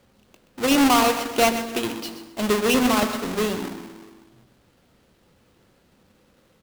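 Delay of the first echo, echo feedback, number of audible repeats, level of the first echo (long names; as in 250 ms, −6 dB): 127 ms, 22%, 2, −12.0 dB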